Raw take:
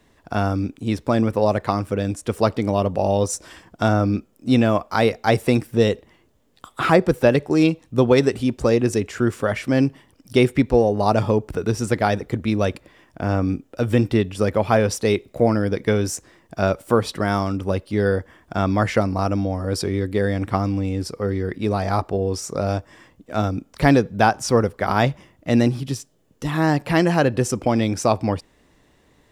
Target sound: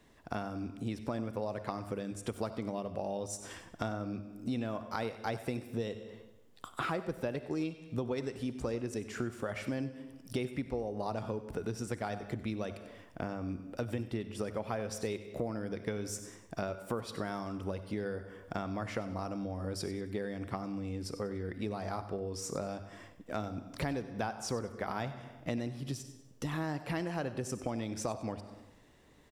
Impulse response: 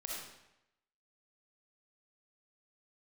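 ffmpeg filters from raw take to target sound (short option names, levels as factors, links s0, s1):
-filter_complex "[0:a]asplit=2[s0][s1];[1:a]atrim=start_sample=2205,asetrate=48510,aresample=44100[s2];[s1][s2]afir=irnorm=-1:irlink=0,volume=0.316[s3];[s0][s3]amix=inputs=2:normalize=0,acompressor=threshold=0.0447:ratio=6,bandreject=f=50:t=h:w=6,bandreject=f=100:t=h:w=6,aecho=1:1:96|192|288:0.168|0.0638|0.0242,volume=0.473"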